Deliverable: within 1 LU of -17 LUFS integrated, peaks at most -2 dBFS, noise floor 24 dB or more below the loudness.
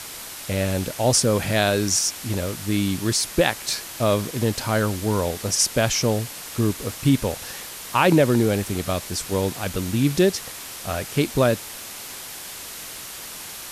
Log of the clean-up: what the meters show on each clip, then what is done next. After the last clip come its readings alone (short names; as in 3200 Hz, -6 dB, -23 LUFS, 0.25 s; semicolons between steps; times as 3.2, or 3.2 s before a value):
noise floor -37 dBFS; noise floor target -47 dBFS; loudness -22.5 LUFS; peak -3.0 dBFS; loudness target -17.0 LUFS
-> denoiser 10 dB, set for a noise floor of -37 dBFS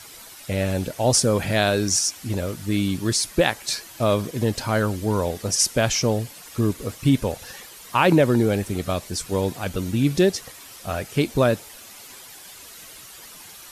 noise floor -43 dBFS; noise floor target -47 dBFS
-> denoiser 6 dB, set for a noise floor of -43 dBFS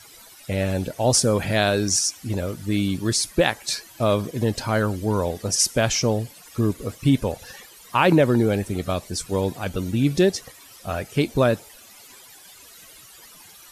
noise floor -47 dBFS; loudness -22.5 LUFS; peak -3.5 dBFS; loudness target -17.0 LUFS
-> gain +5.5 dB; limiter -2 dBFS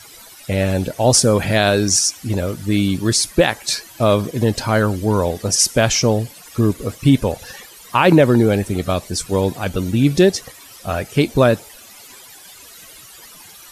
loudness -17.0 LUFS; peak -2.0 dBFS; noise floor -42 dBFS